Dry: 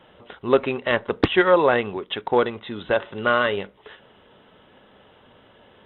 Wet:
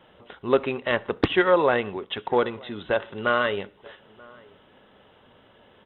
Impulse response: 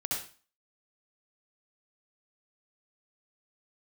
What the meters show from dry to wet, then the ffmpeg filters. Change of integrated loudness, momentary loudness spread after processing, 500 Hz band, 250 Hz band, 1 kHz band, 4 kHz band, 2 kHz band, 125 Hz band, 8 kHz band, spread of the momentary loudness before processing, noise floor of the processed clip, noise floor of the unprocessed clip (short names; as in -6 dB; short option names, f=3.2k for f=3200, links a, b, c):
-2.5 dB, 13 LU, -2.5 dB, -2.5 dB, -2.5 dB, -2.5 dB, -2.5 dB, -2.5 dB, n/a, 13 LU, -57 dBFS, -54 dBFS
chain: -filter_complex "[0:a]asplit=2[a][b];[b]adelay=932.9,volume=-24dB,highshelf=f=4k:g=-21[c];[a][c]amix=inputs=2:normalize=0,asplit=2[d][e];[1:a]atrim=start_sample=2205[f];[e][f]afir=irnorm=-1:irlink=0,volume=-27dB[g];[d][g]amix=inputs=2:normalize=0,volume=-3dB"